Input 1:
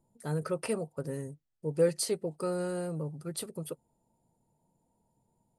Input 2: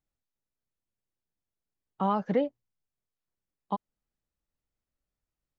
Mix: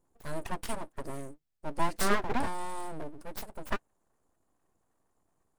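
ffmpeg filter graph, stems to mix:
-filter_complex "[0:a]volume=0dB[a];[1:a]afwtdn=0.00562,aphaser=in_gain=1:out_gain=1:delay=3.7:decay=0.61:speed=0.69:type=sinusoidal,volume=1dB[b];[a][b]amix=inputs=2:normalize=0,aeval=exprs='abs(val(0))':c=same"

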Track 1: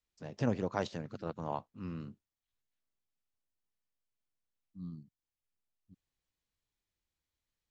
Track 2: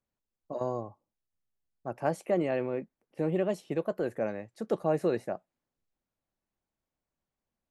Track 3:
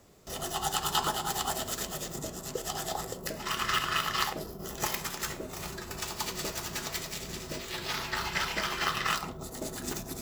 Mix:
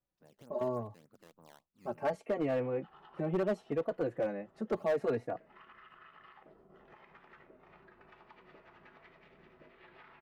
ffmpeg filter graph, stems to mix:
-filter_complex "[0:a]lowpass=f=1.7k:p=1,acrusher=samples=11:mix=1:aa=0.000001:lfo=1:lforange=17.6:lforate=3.4,volume=-13.5dB[a];[1:a]aemphasis=mode=reproduction:type=75fm,asplit=2[b][c];[c]adelay=3.6,afreqshift=0.72[d];[b][d]amix=inputs=2:normalize=1,volume=0.5dB,asplit=2[e][f];[2:a]lowpass=f=2.3k:w=0.5412,lowpass=f=2.3k:w=1.3066,alimiter=level_in=1.5dB:limit=-24dB:level=0:latency=1:release=64,volume=-1.5dB,adelay=2100,volume=-15.5dB[g];[f]apad=whole_len=542960[h];[g][h]sidechaincompress=threshold=-39dB:ratio=8:attack=26:release=519[i];[a][i]amix=inputs=2:normalize=0,equalizer=f=63:w=0.47:g=-12,acompressor=threshold=-54dB:ratio=5,volume=0dB[j];[e][j]amix=inputs=2:normalize=0,volume=25.5dB,asoftclip=hard,volume=-25.5dB"

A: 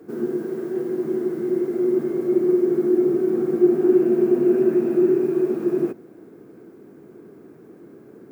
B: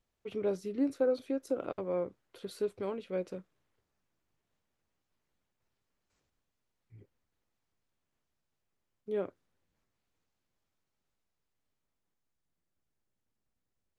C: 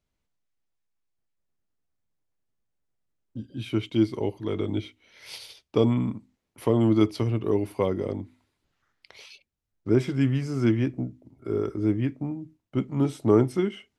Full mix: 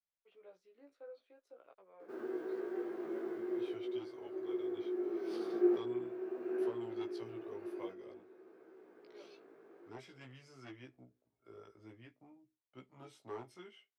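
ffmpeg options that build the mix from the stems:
-filter_complex "[0:a]equalizer=f=360:t=o:w=0.93:g=4,adelay=2000,volume=-4dB,asplit=2[a][b];[b]volume=-22.5dB[c];[1:a]volume=-16.5dB[d];[2:a]bass=f=250:g=9,treble=f=4k:g=12,volume=9dB,asoftclip=hard,volume=-9dB,volume=-16dB,asplit=2[e][f];[f]apad=whole_len=454722[g];[a][g]sidechaincompress=threshold=-39dB:ratio=10:attack=16:release=1340[h];[c]aecho=0:1:316|632|948|1264|1580|1896|2212|2528:1|0.56|0.314|0.176|0.0983|0.0551|0.0308|0.0173[i];[h][d][e][i]amix=inputs=4:normalize=0,acrossover=split=480 4300:gain=0.0631 1 0.178[j][k][l];[j][k][l]amix=inputs=3:normalize=0,flanger=delay=15.5:depth=2.2:speed=0.47"

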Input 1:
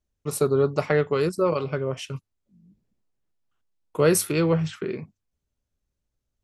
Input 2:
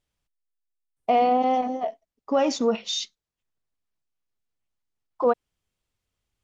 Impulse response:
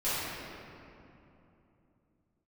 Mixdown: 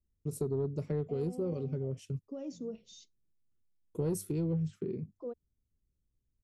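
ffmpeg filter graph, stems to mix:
-filter_complex "[0:a]volume=0.5dB[a];[1:a]highpass=260,volume=-9dB[b];[a][b]amix=inputs=2:normalize=0,firequalizer=gain_entry='entry(160,0);entry(260,-3);entry(410,-5);entry(810,-26);entry(6900,-12)':delay=0.05:min_phase=1,asoftclip=type=tanh:threshold=-16dB,acompressor=threshold=-35dB:ratio=2"

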